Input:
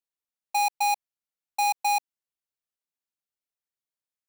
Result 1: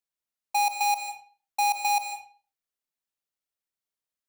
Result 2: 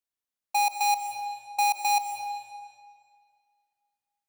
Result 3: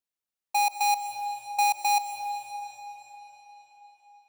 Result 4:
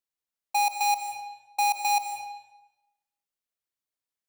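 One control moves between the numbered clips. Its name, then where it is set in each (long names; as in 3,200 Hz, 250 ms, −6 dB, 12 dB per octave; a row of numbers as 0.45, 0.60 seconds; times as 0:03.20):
comb and all-pass reverb, RT60: 0.4, 2.1, 5, 1 seconds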